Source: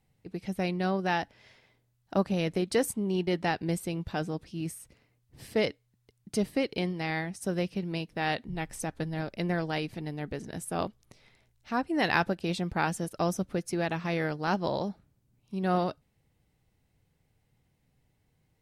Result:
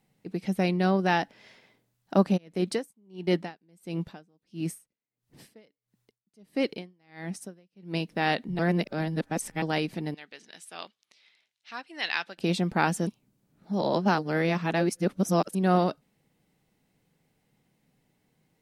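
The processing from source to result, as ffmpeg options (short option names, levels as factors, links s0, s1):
-filter_complex "[0:a]asplit=3[s0][s1][s2];[s0]afade=t=out:st=2.36:d=0.02[s3];[s1]aeval=exprs='val(0)*pow(10,-37*(0.5-0.5*cos(2*PI*1.5*n/s))/20)':c=same,afade=t=in:st=2.36:d=0.02,afade=t=out:st=7.93:d=0.02[s4];[s2]afade=t=in:st=7.93:d=0.02[s5];[s3][s4][s5]amix=inputs=3:normalize=0,asettb=1/sr,asplit=3[s6][s7][s8];[s6]atrim=end=10.144[s9];[s7]atrim=start=10.14:end=12.38,asetpts=PTS-STARTPTS,afade=t=in:d=0.004:c=qsin,afade=t=out:st=2.236:d=0.004:c=qsin,bandpass=f=3400:t=q:w=1.2[s10];[s8]atrim=start=12.376[s11];[s9][s10]acrossfade=d=0.004:c1=hsin:c2=qsin[s12];[s12][s11]acrossfade=d=0.004:c1=qsin:c2=hsin,asplit=5[s13][s14][s15][s16][s17];[s13]atrim=end=8.592[s18];[s14]atrim=start=8.588:end=9.622,asetpts=PTS-STARTPTS,areverse[s19];[s15]atrim=start=9.618:end=13.072[s20];[s16]atrim=start=13.068:end=15.552,asetpts=PTS-STARTPTS,areverse[s21];[s17]atrim=start=15.548[s22];[s18][s19]acrossfade=d=0.004:c1=hsin:c2=hsin[s23];[s23][s20]acrossfade=d=0.004:c1=hsin:c2=hsin[s24];[s24][s21]acrossfade=d=0.004:c1=hsin:c2=hsin[s25];[s25][s22]acrossfade=d=0.004:c1=hsin:c2=hsin,lowshelf=f=130:t=q:w=1.5:g=-11,volume=1.5"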